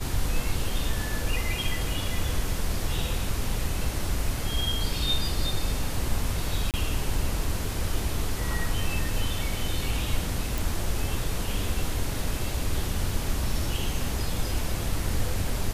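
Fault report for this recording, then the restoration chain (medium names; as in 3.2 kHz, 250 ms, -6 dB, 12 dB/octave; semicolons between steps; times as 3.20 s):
6.71–6.74 s: dropout 28 ms
10.58 s: pop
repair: de-click; interpolate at 6.71 s, 28 ms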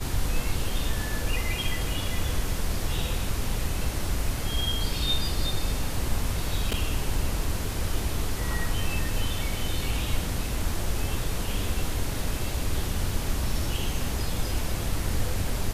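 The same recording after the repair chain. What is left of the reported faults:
nothing left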